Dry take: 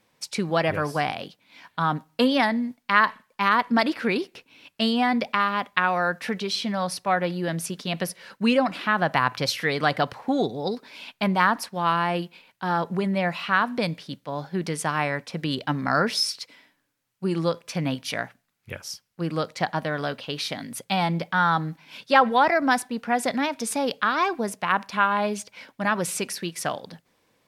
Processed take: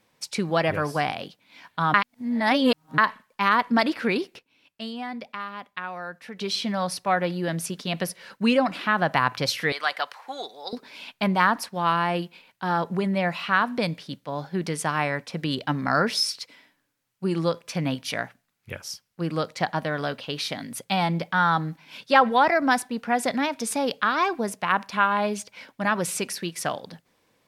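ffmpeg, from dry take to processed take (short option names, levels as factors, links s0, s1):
-filter_complex "[0:a]asettb=1/sr,asplit=3[s0][s1][s2];[s0]atrim=end=9.724[s3];[s1]atrim=start=9.72:end=10.73,asetpts=PTS-STARTPTS,afade=t=in:d=0.004:c=qsin,afade=t=out:st=1.006:d=0.004:c=qsin,highpass=980[s4];[s2]atrim=start=10.726[s5];[s3][s4]acrossfade=d=0.004:c1=hsin:c2=qsin[s6];[s6][s5]acrossfade=d=0.004:c1=qsin:c2=hsin,asplit=5[s7][s8][s9][s10][s11];[s7]atrim=end=1.942[s12];[s8]atrim=start=1.938:end=2.982,asetpts=PTS-STARTPTS,areverse[s13];[s9]atrim=start=2.978:end=4.39,asetpts=PTS-STARTPTS,afade=t=out:st=1.242:d=0.17:c=log:silence=0.266073[s14];[s10]atrim=start=4.39:end=6.39,asetpts=PTS-STARTPTS,volume=0.266[s15];[s11]atrim=start=6.39,asetpts=PTS-STARTPTS,afade=t=in:d=0.17:c=log:silence=0.266073[s16];[s12][s13]acrossfade=d=0.004:c1=hsin:c2=hsin[s17];[s14][s15][s16]concat=n=3:v=0:a=1[s18];[s17][s18]acrossfade=d=0.004:c1=hsin:c2=hsin"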